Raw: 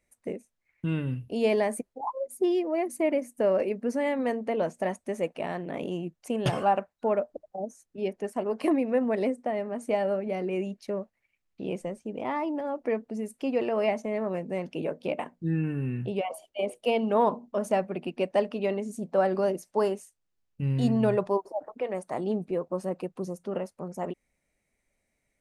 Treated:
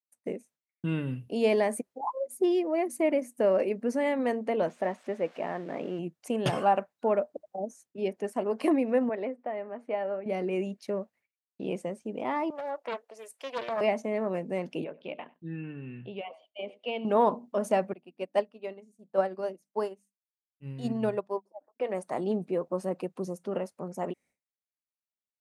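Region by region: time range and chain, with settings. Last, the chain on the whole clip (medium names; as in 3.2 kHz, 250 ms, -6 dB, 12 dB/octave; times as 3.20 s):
4.68–5.99 s: zero-crossing glitches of -31.5 dBFS + low-pass 2.1 kHz + bass shelf 150 Hz -8 dB
9.09–10.26 s: high-pass 610 Hz 6 dB/octave + distance through air 420 m
12.50–13.81 s: high-pass 560 Hz 24 dB/octave + loudspeaker Doppler distortion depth 0.41 ms
14.84–17.05 s: four-pole ladder low-pass 3.9 kHz, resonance 45% + delay 97 ms -22 dB
17.93–21.80 s: hum notches 50/100/150/200/250/300 Hz + upward expansion 2.5:1, over -35 dBFS
whole clip: high-pass 140 Hz; expander -55 dBFS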